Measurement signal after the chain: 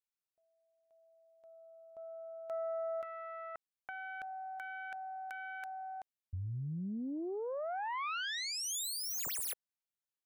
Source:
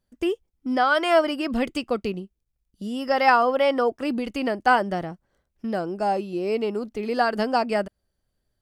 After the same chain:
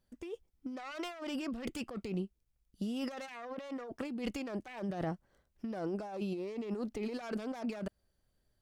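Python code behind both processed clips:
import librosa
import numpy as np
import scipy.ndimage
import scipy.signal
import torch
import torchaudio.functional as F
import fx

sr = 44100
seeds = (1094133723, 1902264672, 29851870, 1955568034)

y = fx.self_delay(x, sr, depth_ms=0.3)
y = fx.over_compress(y, sr, threshold_db=-32.0, ratio=-1.0)
y = y * librosa.db_to_amplitude(-8.0)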